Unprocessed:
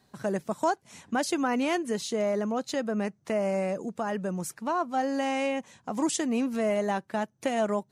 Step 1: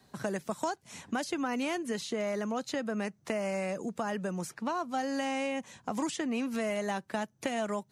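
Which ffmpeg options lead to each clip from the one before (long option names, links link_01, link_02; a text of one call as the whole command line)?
ffmpeg -i in.wav -filter_complex "[0:a]acrossover=split=180|1200|2800|5900[link_01][link_02][link_03][link_04][link_05];[link_01]acompressor=threshold=-47dB:ratio=4[link_06];[link_02]acompressor=threshold=-36dB:ratio=4[link_07];[link_03]acompressor=threshold=-43dB:ratio=4[link_08];[link_04]acompressor=threshold=-49dB:ratio=4[link_09];[link_05]acompressor=threshold=-52dB:ratio=4[link_10];[link_06][link_07][link_08][link_09][link_10]amix=inputs=5:normalize=0,volume=2.5dB" out.wav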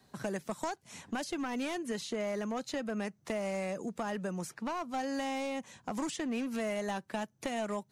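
ffmpeg -i in.wav -af "aeval=exprs='clip(val(0),-1,0.0316)':channel_layout=same,volume=-2dB" out.wav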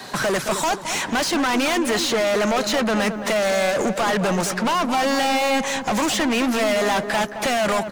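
ffmpeg -i in.wav -filter_complex "[0:a]asplit=2[link_01][link_02];[link_02]highpass=frequency=720:poles=1,volume=33dB,asoftclip=type=tanh:threshold=-20.5dB[link_03];[link_01][link_03]amix=inputs=2:normalize=0,lowpass=frequency=5000:poles=1,volume=-6dB,asplit=2[link_04][link_05];[link_05]adelay=218,lowpass=frequency=1300:poles=1,volume=-8dB,asplit=2[link_06][link_07];[link_07]adelay=218,lowpass=frequency=1300:poles=1,volume=0.47,asplit=2[link_08][link_09];[link_09]adelay=218,lowpass=frequency=1300:poles=1,volume=0.47,asplit=2[link_10][link_11];[link_11]adelay=218,lowpass=frequency=1300:poles=1,volume=0.47,asplit=2[link_12][link_13];[link_13]adelay=218,lowpass=frequency=1300:poles=1,volume=0.47[link_14];[link_04][link_06][link_08][link_10][link_12][link_14]amix=inputs=6:normalize=0,volume=6.5dB" out.wav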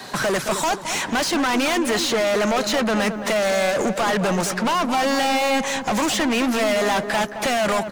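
ffmpeg -i in.wav -af anull out.wav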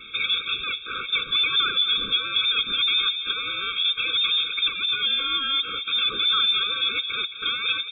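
ffmpeg -i in.wav -af "lowpass=frequency=3200:width_type=q:width=0.5098,lowpass=frequency=3200:width_type=q:width=0.6013,lowpass=frequency=3200:width_type=q:width=0.9,lowpass=frequency=3200:width_type=q:width=2.563,afreqshift=-3800,afftfilt=real='re*eq(mod(floor(b*sr/1024/540),2),0)':imag='im*eq(mod(floor(b*sr/1024/540),2),0)':win_size=1024:overlap=0.75" out.wav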